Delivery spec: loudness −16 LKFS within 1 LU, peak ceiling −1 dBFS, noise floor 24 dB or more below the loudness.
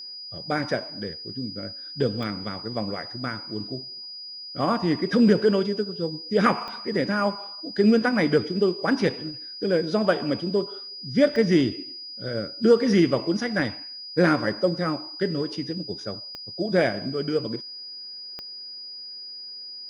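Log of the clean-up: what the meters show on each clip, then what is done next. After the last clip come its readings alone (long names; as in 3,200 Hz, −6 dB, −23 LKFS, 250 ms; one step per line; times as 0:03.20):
number of clicks 5; interfering tone 4,900 Hz; level of the tone −36 dBFS; integrated loudness −25.0 LKFS; sample peak −5.0 dBFS; target loudness −16.0 LKFS
→ click removal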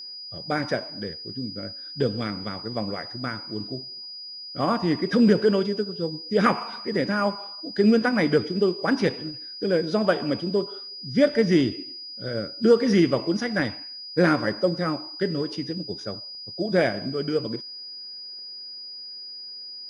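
number of clicks 0; interfering tone 4,900 Hz; level of the tone −36 dBFS
→ notch filter 4,900 Hz, Q 30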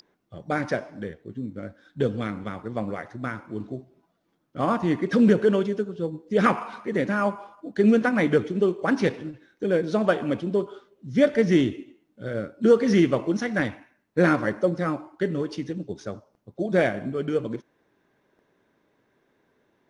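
interfering tone none found; integrated loudness −24.5 LKFS; sample peak −5.0 dBFS; target loudness −16.0 LKFS
→ level +8.5 dB
brickwall limiter −1 dBFS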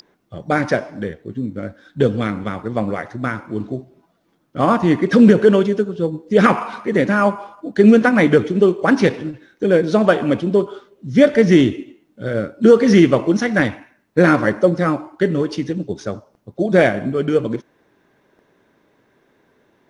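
integrated loudness −16.5 LKFS; sample peak −1.0 dBFS; background noise floor −61 dBFS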